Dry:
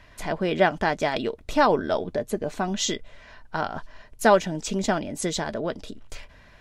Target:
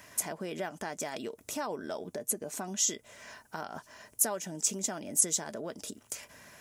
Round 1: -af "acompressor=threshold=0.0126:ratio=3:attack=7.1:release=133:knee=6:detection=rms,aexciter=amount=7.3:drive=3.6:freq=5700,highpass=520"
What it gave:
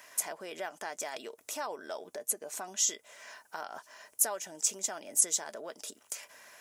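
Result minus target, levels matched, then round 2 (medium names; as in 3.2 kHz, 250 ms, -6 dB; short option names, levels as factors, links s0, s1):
125 Hz band -16.5 dB
-af "acompressor=threshold=0.0126:ratio=3:attack=7.1:release=133:knee=6:detection=rms,aexciter=amount=7.3:drive=3.6:freq=5700,highpass=150"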